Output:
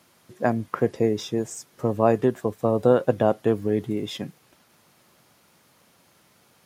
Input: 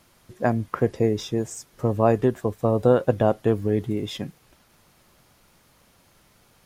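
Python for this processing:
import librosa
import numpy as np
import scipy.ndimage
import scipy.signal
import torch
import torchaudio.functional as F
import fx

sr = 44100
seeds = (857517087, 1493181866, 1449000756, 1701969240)

y = scipy.signal.sosfilt(scipy.signal.butter(2, 130.0, 'highpass', fs=sr, output='sos'), x)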